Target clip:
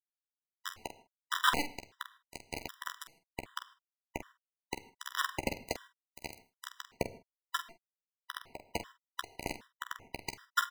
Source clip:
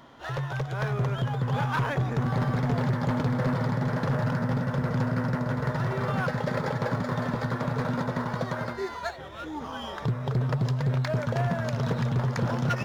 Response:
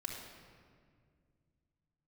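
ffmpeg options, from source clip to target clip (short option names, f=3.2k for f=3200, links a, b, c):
-filter_complex "[0:a]acrossover=split=440 3300:gain=0.0631 1 0.158[a][b][c];[a][b][c]amix=inputs=3:normalize=0,acrusher=bits=3:mix=0:aa=0.000001,highshelf=f=2.6k:g=-6.5,bandreject=f=600:w=12,atempo=1.2,aecho=1:1:13|46:0.282|0.335,asplit=2[d][e];[1:a]atrim=start_sample=2205,afade=t=out:st=0.21:d=0.01,atrim=end_sample=9702[f];[e][f]afir=irnorm=-1:irlink=0,volume=-8.5dB[g];[d][g]amix=inputs=2:normalize=0,afftfilt=real='re*gt(sin(2*PI*1.3*pts/sr)*(1-2*mod(floor(b*sr/1024/990),2)),0)':imag='im*gt(sin(2*PI*1.3*pts/sr)*(1-2*mod(floor(b*sr/1024/990),2)),0)':win_size=1024:overlap=0.75,volume=4dB"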